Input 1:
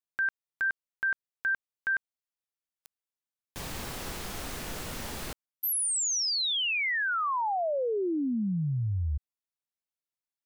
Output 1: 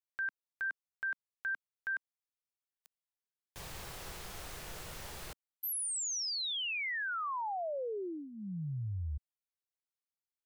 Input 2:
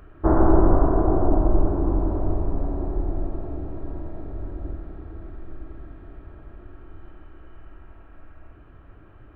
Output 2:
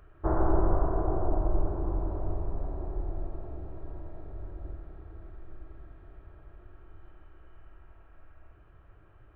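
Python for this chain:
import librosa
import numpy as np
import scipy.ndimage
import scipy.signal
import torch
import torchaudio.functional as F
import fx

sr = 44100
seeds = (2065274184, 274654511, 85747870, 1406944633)

y = fx.peak_eq(x, sr, hz=250.0, db=-13.0, octaves=0.47)
y = y * librosa.db_to_amplitude(-7.5)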